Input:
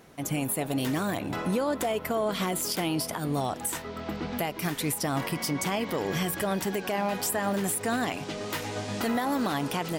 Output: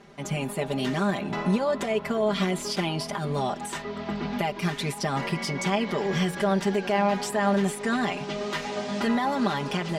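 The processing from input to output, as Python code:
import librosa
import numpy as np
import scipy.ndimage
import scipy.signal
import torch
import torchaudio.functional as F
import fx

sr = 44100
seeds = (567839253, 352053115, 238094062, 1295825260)

y = scipy.signal.sosfilt(scipy.signal.butter(2, 5700.0, 'lowpass', fs=sr, output='sos'), x)
y = y + 0.92 * np.pad(y, (int(5.0 * sr / 1000.0), 0))[:len(y)]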